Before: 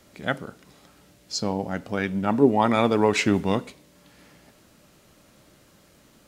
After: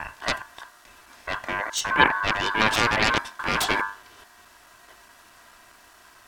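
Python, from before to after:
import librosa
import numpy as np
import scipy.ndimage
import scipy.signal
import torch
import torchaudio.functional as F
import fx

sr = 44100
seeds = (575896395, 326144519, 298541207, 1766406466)

y = fx.block_reorder(x, sr, ms=212.0, group=3)
y = fx.hum_notches(y, sr, base_hz=50, count=8)
y = y + 0.49 * np.pad(y, (int(3.0 * sr / 1000.0), 0))[:len(y)]
y = fx.cheby_harmonics(y, sr, harmonics=(7,), levels_db=(-7,), full_scale_db=-5.0)
y = y * np.sin(2.0 * np.pi * 1300.0 * np.arange(len(y)) / sr)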